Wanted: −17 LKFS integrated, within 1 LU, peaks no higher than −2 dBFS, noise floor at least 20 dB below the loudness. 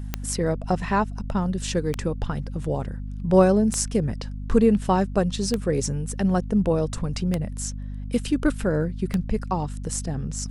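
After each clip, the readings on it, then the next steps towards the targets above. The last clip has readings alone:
number of clicks 6; mains hum 50 Hz; hum harmonics up to 250 Hz; level of the hum −30 dBFS; integrated loudness −24.5 LKFS; sample peak −4.5 dBFS; target loudness −17.0 LKFS
→ click removal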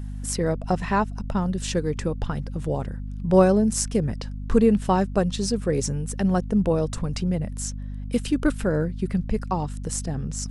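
number of clicks 0; mains hum 50 Hz; hum harmonics up to 250 Hz; level of the hum −30 dBFS
→ mains-hum notches 50/100/150/200/250 Hz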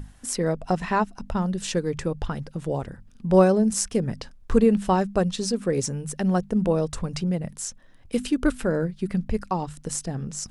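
mains hum none found; integrated loudness −25.0 LKFS; sample peak −5.5 dBFS; target loudness −17.0 LKFS
→ level +8 dB
brickwall limiter −2 dBFS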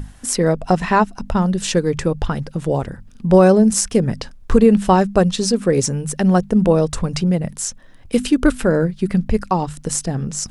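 integrated loudness −17.5 LKFS; sample peak −2.0 dBFS; background noise floor −42 dBFS

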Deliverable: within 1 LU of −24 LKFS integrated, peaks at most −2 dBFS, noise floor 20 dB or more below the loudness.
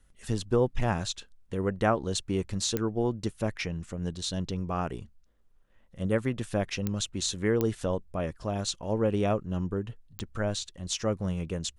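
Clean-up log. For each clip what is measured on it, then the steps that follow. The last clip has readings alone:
number of clicks 4; integrated loudness −30.5 LKFS; sample peak −12.0 dBFS; target loudness −24.0 LKFS
→ click removal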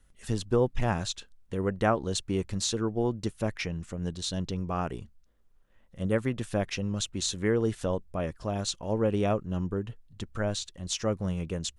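number of clicks 0; integrated loudness −30.5 LKFS; sample peak −12.0 dBFS; target loudness −24.0 LKFS
→ level +6.5 dB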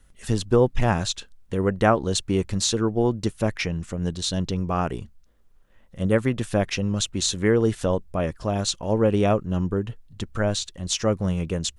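integrated loudness −24.0 LKFS; sample peak −5.5 dBFS; background noise floor −55 dBFS

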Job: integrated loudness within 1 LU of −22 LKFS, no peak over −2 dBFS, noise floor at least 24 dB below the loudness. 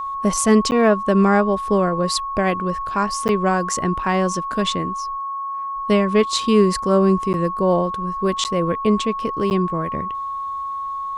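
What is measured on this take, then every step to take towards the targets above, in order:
number of dropouts 5; longest dropout 9.6 ms; interfering tone 1,100 Hz; level of the tone −24 dBFS; integrated loudness −19.5 LKFS; sample peak −2.5 dBFS; target loudness −22.0 LKFS
→ repair the gap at 0:00.71/0:03.28/0:07.33/0:08.44/0:09.50, 9.6 ms
notch filter 1,100 Hz, Q 30
level −2.5 dB

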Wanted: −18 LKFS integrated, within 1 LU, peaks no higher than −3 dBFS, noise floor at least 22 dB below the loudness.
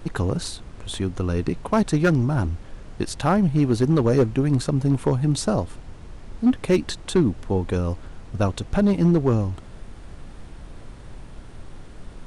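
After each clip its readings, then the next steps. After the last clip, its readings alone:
share of clipped samples 0.7%; peaks flattened at −11.5 dBFS; background noise floor −41 dBFS; target noise floor −45 dBFS; integrated loudness −22.5 LKFS; sample peak −11.5 dBFS; target loudness −18.0 LKFS
→ clipped peaks rebuilt −11.5 dBFS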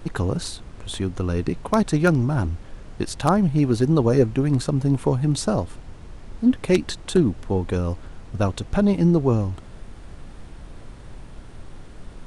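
share of clipped samples 0.0%; background noise floor −41 dBFS; target noise floor −44 dBFS
→ noise reduction from a noise print 6 dB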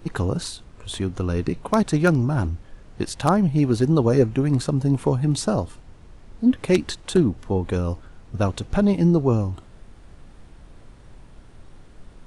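background noise floor −47 dBFS; integrated loudness −22.0 LKFS; sample peak −2.5 dBFS; target loudness −18.0 LKFS
→ level +4 dB
brickwall limiter −3 dBFS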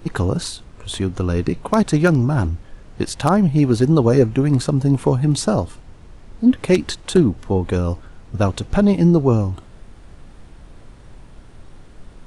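integrated loudness −18.0 LKFS; sample peak −3.0 dBFS; background noise floor −43 dBFS

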